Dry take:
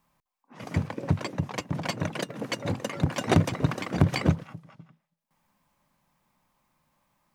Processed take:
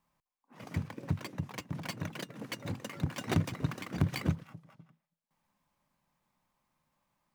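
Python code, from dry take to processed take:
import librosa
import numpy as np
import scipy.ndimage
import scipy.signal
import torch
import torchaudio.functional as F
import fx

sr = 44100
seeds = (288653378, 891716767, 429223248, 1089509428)

y = fx.dead_time(x, sr, dead_ms=0.054)
y = fx.dynamic_eq(y, sr, hz=600.0, q=0.96, threshold_db=-42.0, ratio=4.0, max_db=-6)
y = y * librosa.db_to_amplitude(-7.0)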